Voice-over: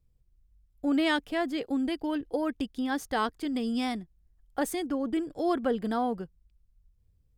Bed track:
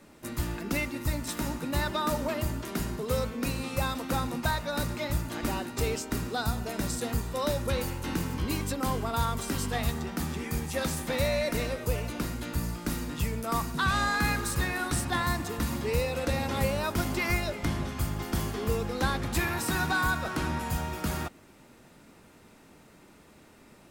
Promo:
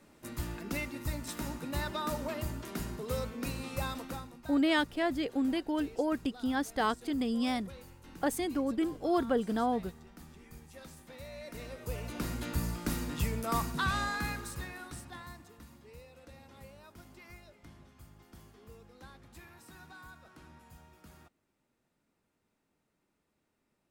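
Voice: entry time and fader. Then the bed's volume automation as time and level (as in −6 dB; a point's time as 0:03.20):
3.65 s, −1.5 dB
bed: 0:03.99 −6 dB
0:04.38 −20 dB
0:11.24 −20 dB
0:12.33 −2 dB
0:13.64 −2 dB
0:15.78 −24.5 dB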